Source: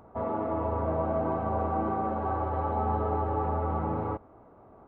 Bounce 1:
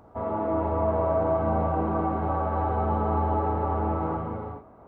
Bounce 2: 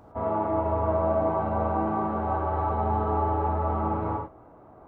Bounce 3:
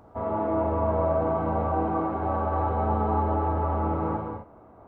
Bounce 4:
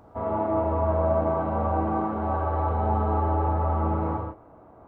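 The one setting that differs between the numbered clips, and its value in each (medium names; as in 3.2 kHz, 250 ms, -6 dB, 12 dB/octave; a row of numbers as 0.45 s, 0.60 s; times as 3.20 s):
gated-style reverb, gate: 470 ms, 130 ms, 290 ms, 190 ms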